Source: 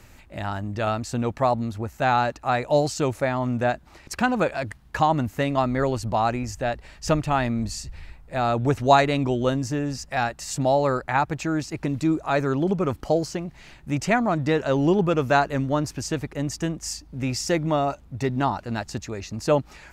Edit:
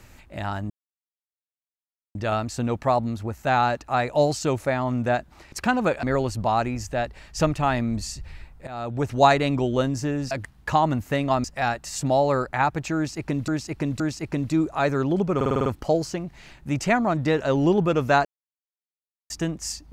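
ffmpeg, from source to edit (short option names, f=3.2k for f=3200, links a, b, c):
-filter_complex "[0:a]asplit=16[a][b][c][d][e][f][g][h][i][j][k][l][m][n][o][p];[a]atrim=end=0.7,asetpts=PTS-STARTPTS,afade=t=out:st=0.696:d=0.004:c=hsin,apad=pad_dur=1.45[q];[b]atrim=start=0.7:end=4.582,asetpts=PTS-STARTPTS,afade=t=in:d=0.004:c=hsin[r];[c]atrim=start=5.708:end=8.35,asetpts=PTS-STARTPTS,afade=t=out:st=2.638:d=0.004:c=hsin:silence=0.16788[s];[d]atrim=start=8.35:end=9.992,asetpts=PTS-STARTPTS,afade=t=in:d=0.6:silence=0.16788[t];[e]atrim=start=4.578:end=5.712[u];[f]atrim=start=9.988:end=12.032[v];[g]atrim=start=11.508:end=12.032[w];[h]atrim=start=11.508:end=12.922[x];[i]atrim=start=12.868:end=12.922[y];[j]atrim=start=12.868:end=12.922[z];[k]atrim=start=12.868:end=12.922[aa];[l]atrim=start=12.868:end=12.922[ab];[m]atrim=start=12.868:end=12.922[ac];[n]atrim=start=12.868:end=15.46,asetpts=PTS-STARTPTS,afade=t=out:st=2.588:d=0.004:c=hsin[ad];[o]atrim=start=15.46:end=16.51,asetpts=PTS-STARTPTS,volume=0[ae];[p]atrim=start=16.51,asetpts=PTS-STARTPTS,afade=t=in:d=0.004:c=hsin[af];[q][r]concat=n=2:v=0:a=1[ag];[s][t]concat=n=2:v=0:a=1[ah];[ag][ah]acrossfade=d=0.004:c1=hsin:c2=hsin[ai];[ai][u]acrossfade=d=0.004:c1=hsin:c2=hsin[aj];[aj][v]acrossfade=d=0.004:c1=hsin:c2=hsin[ak];[ak][w]acrossfade=d=0.004:c1=hsin:c2=hsin[al];[al][x]acrossfade=d=0.004:c1=hsin:c2=hsin[am];[am][y]acrossfade=d=0.004:c1=hsin:c2=hsin[an];[an][z]acrossfade=d=0.004:c1=hsin:c2=hsin[ao];[ao][aa]acrossfade=d=0.004:c1=hsin:c2=hsin[ap];[ap][ab]acrossfade=d=0.004:c1=hsin:c2=hsin[aq];[aq][ac]acrossfade=d=0.004:c1=hsin:c2=hsin[ar];[ad][ae][af]concat=n=3:v=0:a=1[as];[ar][as]acrossfade=d=0.004:c1=hsin:c2=hsin"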